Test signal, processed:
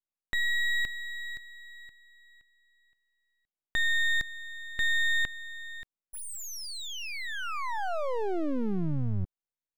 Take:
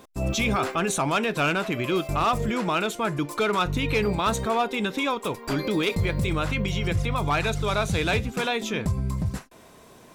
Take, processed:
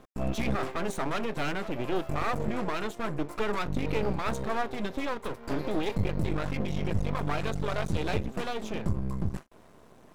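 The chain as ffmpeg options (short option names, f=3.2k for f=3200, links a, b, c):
-af "tiltshelf=f=1.4k:g=5.5,aeval=exprs='max(val(0),0)':c=same,volume=-4.5dB"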